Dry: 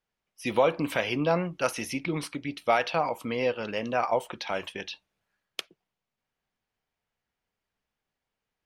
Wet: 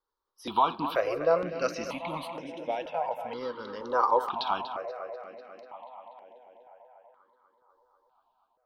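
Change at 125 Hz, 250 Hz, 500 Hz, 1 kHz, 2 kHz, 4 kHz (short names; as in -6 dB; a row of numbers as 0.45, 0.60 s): -10.0, -7.0, -2.0, +2.0, -7.0, -4.5 dB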